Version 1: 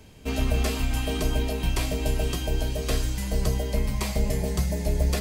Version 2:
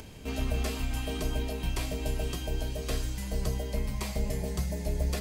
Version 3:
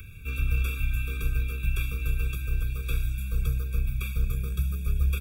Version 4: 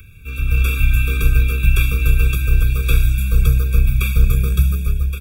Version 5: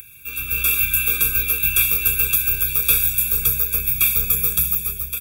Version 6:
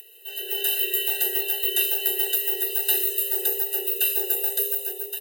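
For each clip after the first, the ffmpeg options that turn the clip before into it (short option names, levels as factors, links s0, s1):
-af "acompressor=mode=upward:threshold=0.0282:ratio=2.5,volume=0.501"
-filter_complex "[0:a]firequalizer=gain_entry='entry(110,0);entry(240,-17);entry(510,-8);entry(3000,5);entry(4600,-17);entry(13000,3)':delay=0.05:min_phase=1,acrossover=split=400|1100|3500[s0][s1][s2][s3];[s1]acrusher=bits=5:dc=4:mix=0:aa=0.000001[s4];[s0][s4][s2][s3]amix=inputs=4:normalize=0,afftfilt=real='re*eq(mod(floor(b*sr/1024/550),2),0)':imag='im*eq(mod(floor(b*sr/1024/550),2),0)':win_size=1024:overlap=0.75,volume=1.88"
-af "dynaudnorm=f=150:g=7:m=4.47,volume=1.19"
-af "aemphasis=mode=production:type=riaa,volume=0.75"
-af "afreqshift=340,volume=0.531"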